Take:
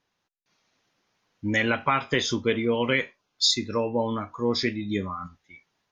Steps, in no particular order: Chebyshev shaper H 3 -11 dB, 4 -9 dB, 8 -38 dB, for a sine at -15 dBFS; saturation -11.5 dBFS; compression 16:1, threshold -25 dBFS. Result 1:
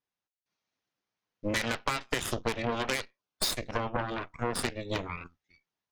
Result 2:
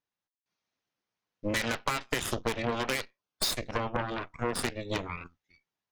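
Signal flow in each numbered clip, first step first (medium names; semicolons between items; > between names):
saturation > Chebyshev shaper > compression; Chebyshev shaper > saturation > compression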